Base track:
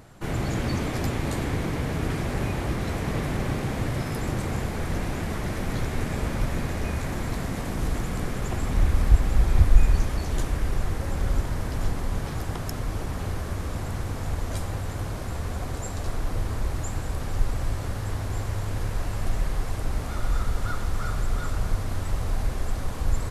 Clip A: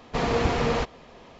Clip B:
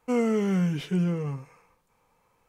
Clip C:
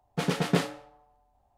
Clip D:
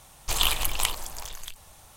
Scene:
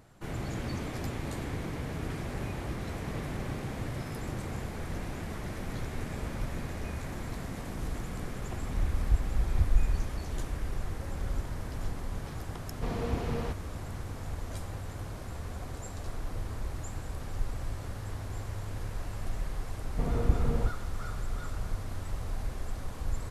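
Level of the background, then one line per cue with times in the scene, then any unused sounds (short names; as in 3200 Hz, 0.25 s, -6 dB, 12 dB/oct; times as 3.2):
base track -8.5 dB
12.68 add A -15.5 dB + low shelf 390 Hz +10.5 dB
19.84 add A -16 dB + tilt -4.5 dB/oct
not used: B, C, D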